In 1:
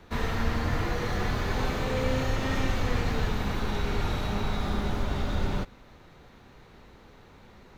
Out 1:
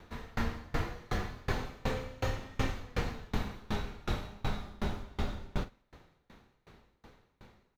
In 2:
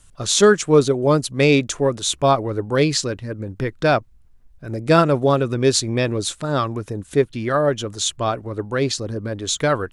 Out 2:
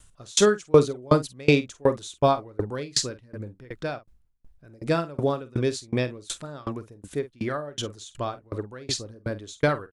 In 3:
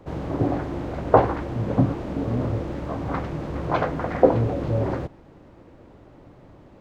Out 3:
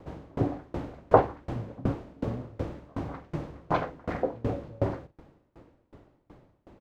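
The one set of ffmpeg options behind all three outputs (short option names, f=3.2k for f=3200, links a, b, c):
-filter_complex "[0:a]asplit=2[a][b];[b]adelay=48,volume=-10dB[c];[a][c]amix=inputs=2:normalize=0,aeval=exprs='val(0)*pow(10,-29*if(lt(mod(2.7*n/s,1),2*abs(2.7)/1000),1-mod(2.7*n/s,1)/(2*abs(2.7)/1000),(mod(2.7*n/s,1)-2*abs(2.7)/1000)/(1-2*abs(2.7)/1000))/20)':c=same"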